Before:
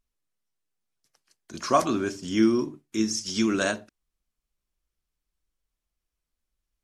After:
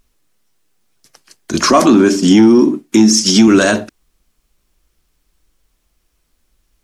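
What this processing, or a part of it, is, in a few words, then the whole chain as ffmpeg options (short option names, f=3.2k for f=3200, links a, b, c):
mastering chain: -filter_complex "[0:a]asettb=1/sr,asplit=3[a][b][c];[a]atrim=end=1.704[d];[b]atrim=start=1.7:end=3.48,asetpts=PTS-STARTPTS,afade=t=in:d=0.004:c=qsin,afade=t=out:st=1.776:d=0.004:c=qsin,lowshelf=f=160:t=q:w=3:g=-7.5[e];[c]atrim=start=3.476[f];[d][e]acrossfade=d=0.004:c1=hsin:c2=qsin[g];[g][f]acrossfade=d=0.004:c1=qsin:c2=hsin,equalizer=f=310:t=o:w=1:g=3,acompressor=threshold=-21dB:ratio=2,asoftclip=type=tanh:threshold=-15dB,alimiter=level_in=21.5dB:limit=-1dB:release=50:level=0:latency=1,volume=-1dB"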